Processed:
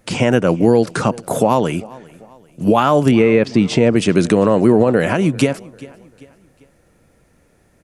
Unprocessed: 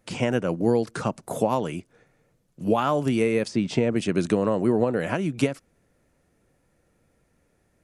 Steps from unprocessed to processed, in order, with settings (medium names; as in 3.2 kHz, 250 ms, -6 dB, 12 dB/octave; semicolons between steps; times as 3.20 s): 3.11–3.54 s: low-pass 3.2 kHz 12 dB/octave; on a send: feedback delay 394 ms, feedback 41%, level -23 dB; on the sum: loudness maximiser +12.5 dB; trim -1.5 dB